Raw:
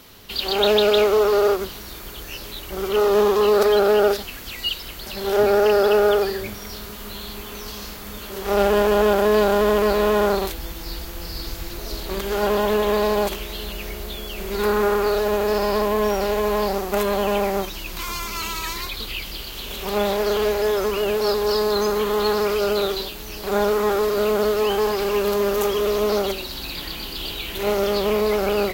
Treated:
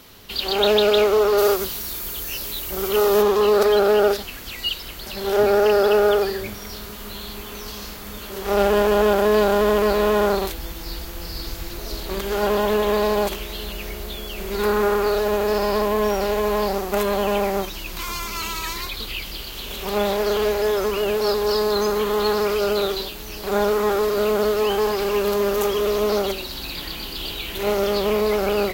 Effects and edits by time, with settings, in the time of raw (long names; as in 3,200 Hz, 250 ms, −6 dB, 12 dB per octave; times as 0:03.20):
0:01.37–0:03.21: high-shelf EQ 4,600 Hz → 7,700 Hz +12 dB